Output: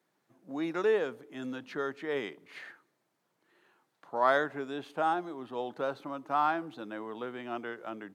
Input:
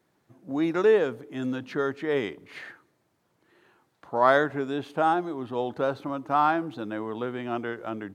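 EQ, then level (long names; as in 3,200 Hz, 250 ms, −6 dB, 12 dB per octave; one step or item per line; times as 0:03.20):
high-pass filter 140 Hz 24 dB per octave
parametric band 190 Hz −4.5 dB 2.9 octaves
−4.5 dB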